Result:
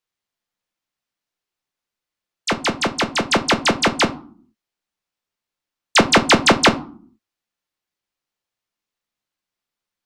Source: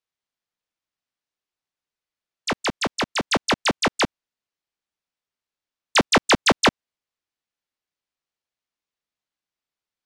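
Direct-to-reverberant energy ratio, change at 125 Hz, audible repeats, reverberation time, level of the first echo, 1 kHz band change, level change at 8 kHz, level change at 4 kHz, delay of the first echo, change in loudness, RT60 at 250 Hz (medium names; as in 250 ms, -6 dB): 7.5 dB, +5.0 dB, no echo, 0.50 s, no echo, +4.5 dB, +4.0 dB, +4.0 dB, no echo, +4.0 dB, 0.80 s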